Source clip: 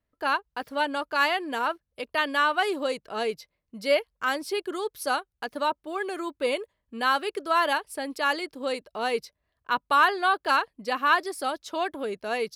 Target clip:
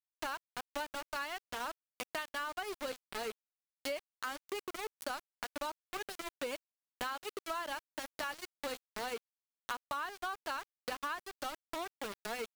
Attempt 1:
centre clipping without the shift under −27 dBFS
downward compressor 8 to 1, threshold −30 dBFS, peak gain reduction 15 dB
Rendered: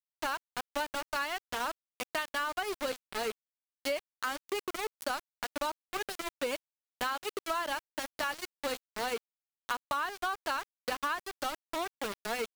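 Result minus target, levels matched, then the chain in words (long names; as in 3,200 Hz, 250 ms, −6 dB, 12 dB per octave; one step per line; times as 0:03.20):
downward compressor: peak gain reduction −5.5 dB
centre clipping without the shift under −27 dBFS
downward compressor 8 to 1, threshold −36.5 dBFS, peak gain reduction 21 dB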